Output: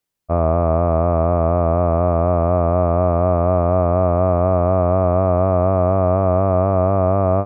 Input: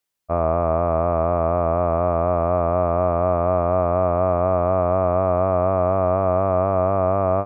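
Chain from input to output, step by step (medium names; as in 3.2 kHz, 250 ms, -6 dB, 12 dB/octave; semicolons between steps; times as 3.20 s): bass shelf 450 Hz +8.5 dB; trim -1 dB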